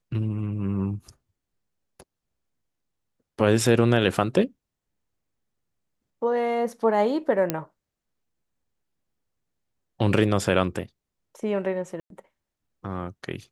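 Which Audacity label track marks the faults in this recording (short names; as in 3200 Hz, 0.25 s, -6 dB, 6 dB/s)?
7.500000	7.500000	pop -8 dBFS
12.000000	12.100000	gap 0.102 s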